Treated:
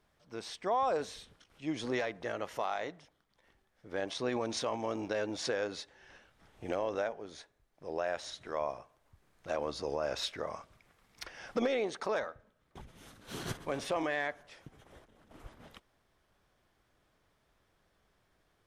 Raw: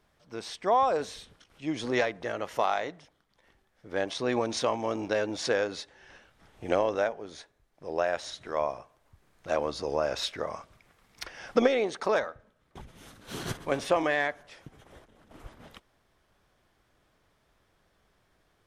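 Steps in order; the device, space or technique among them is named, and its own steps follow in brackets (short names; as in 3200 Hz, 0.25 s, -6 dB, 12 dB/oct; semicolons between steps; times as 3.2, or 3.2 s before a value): clipper into limiter (hard clip -13.5 dBFS, distortion -30 dB; limiter -19 dBFS, peak gain reduction 5.5 dB); gain -4 dB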